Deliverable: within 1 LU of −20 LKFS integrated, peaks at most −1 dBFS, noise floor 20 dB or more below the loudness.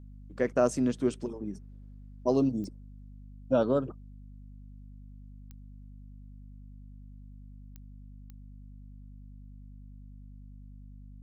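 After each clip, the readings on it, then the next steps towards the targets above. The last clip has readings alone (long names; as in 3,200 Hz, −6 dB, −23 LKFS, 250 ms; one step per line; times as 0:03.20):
number of clicks 4; mains hum 50 Hz; hum harmonics up to 250 Hz; level of the hum −45 dBFS; integrated loudness −29.5 LKFS; sample peak −12.0 dBFS; target loudness −20.0 LKFS
→ click removal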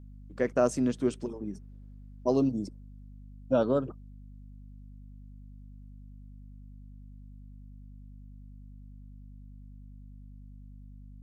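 number of clicks 0; mains hum 50 Hz; hum harmonics up to 250 Hz; level of the hum −45 dBFS
→ hum removal 50 Hz, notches 5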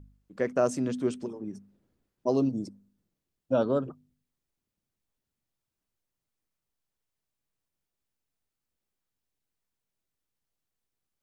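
mains hum none found; integrated loudness −29.5 LKFS; sample peak −12.5 dBFS; target loudness −20.0 LKFS
→ level +9.5 dB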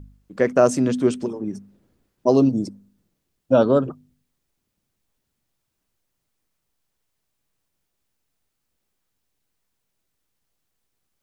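integrated loudness −20.0 LKFS; sample peak −3.0 dBFS; background noise floor −77 dBFS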